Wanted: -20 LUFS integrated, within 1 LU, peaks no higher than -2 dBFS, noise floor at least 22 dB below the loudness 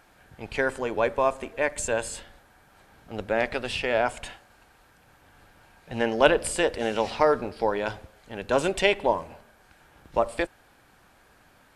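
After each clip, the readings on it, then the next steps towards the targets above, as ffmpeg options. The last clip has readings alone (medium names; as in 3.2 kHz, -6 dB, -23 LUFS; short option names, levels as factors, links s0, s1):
loudness -26.0 LUFS; peak level -3.0 dBFS; loudness target -20.0 LUFS
-> -af "volume=2,alimiter=limit=0.794:level=0:latency=1"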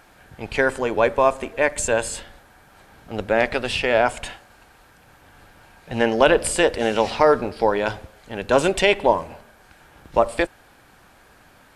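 loudness -20.5 LUFS; peak level -2.0 dBFS; noise floor -53 dBFS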